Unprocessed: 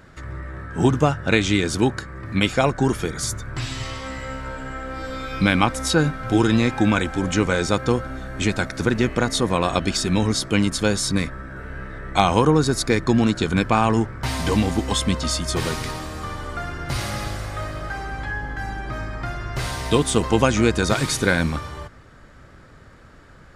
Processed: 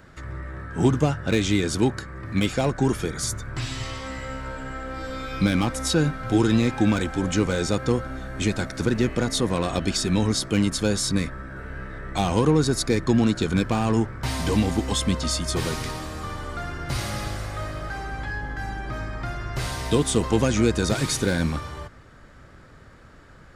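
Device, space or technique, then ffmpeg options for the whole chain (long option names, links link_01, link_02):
one-band saturation: -filter_complex "[0:a]acrossover=split=560|3700[link_01][link_02][link_03];[link_02]asoftclip=type=tanh:threshold=-26.5dB[link_04];[link_01][link_04][link_03]amix=inputs=3:normalize=0,volume=-1.5dB"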